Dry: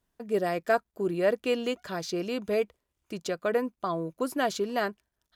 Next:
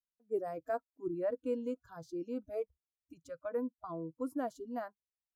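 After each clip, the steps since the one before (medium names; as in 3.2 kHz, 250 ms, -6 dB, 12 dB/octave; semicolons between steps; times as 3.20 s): spectral noise reduction 26 dB; FFT filter 320 Hz 0 dB, 1.3 kHz -10 dB, 3.3 kHz -25 dB, 8.8 kHz -13 dB; trim -4.5 dB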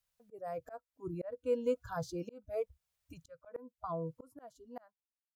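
fade out at the end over 1.53 s; FFT filter 110 Hz 0 dB, 340 Hz -21 dB, 490 Hz -7 dB; slow attack 668 ms; trim +18 dB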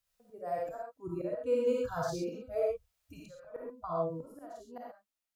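reverberation, pre-delay 10 ms, DRR -3.5 dB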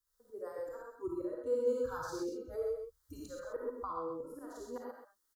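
recorder AGC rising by 18 dB/s; static phaser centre 680 Hz, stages 6; delay 130 ms -7.5 dB; trim -2 dB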